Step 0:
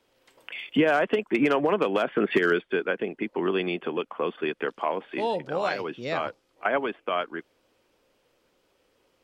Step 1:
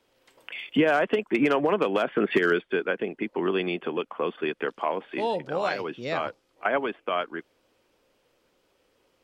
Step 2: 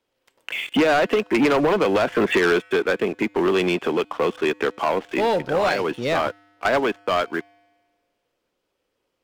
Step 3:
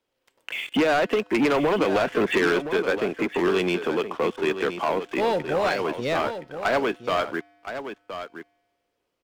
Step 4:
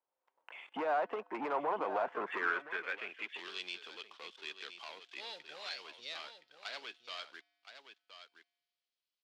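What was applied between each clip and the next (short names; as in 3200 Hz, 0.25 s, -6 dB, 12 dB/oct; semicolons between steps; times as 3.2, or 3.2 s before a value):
nothing audible
sample leveller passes 3; resonator 100 Hz, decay 1.6 s, harmonics odd, mix 30%; gain +1 dB
echo 1.02 s -10 dB; gain -3 dB
band-pass sweep 900 Hz -> 4100 Hz, 2.11–3.55; gain -5 dB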